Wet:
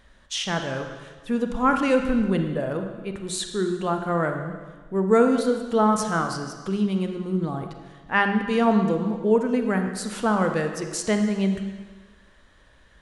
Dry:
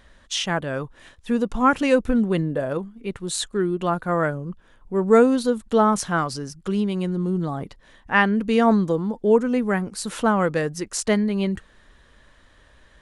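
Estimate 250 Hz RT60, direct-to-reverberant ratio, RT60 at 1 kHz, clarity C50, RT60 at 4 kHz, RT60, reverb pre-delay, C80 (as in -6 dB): 1.4 s, 5.0 dB, 1.4 s, 6.0 dB, 1.4 s, 1.4 s, 32 ms, 8.0 dB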